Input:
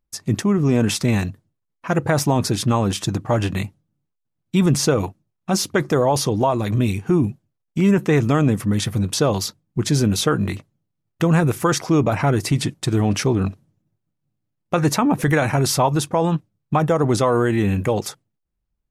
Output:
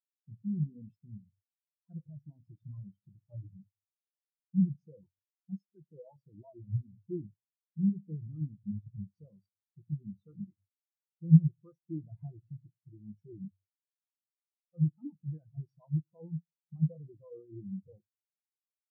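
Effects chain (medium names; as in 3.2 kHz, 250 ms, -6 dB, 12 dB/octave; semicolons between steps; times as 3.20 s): peak limiter -14.5 dBFS, peak gain reduction 9 dB; simulated room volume 600 m³, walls furnished, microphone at 0.78 m; spectral contrast expander 4:1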